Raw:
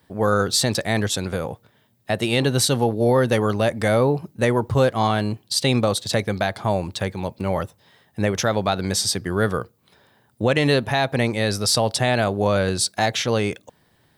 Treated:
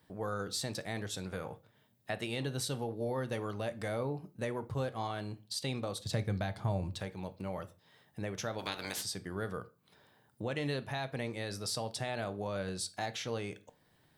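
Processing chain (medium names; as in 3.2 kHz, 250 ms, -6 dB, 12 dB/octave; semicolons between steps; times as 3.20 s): 8.58–9.01 s: spectral peaks clipped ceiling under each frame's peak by 25 dB; compression 1.5:1, threshold -43 dBFS, peak gain reduction 10.5 dB; 5.97–6.98 s: peaking EQ 70 Hz +13 dB 2.6 oct; reverberation RT60 0.35 s, pre-delay 6 ms, DRR 11 dB; 1.29–2.27 s: dynamic bell 1.7 kHz, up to +5 dB, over -48 dBFS, Q 0.75; trim -8 dB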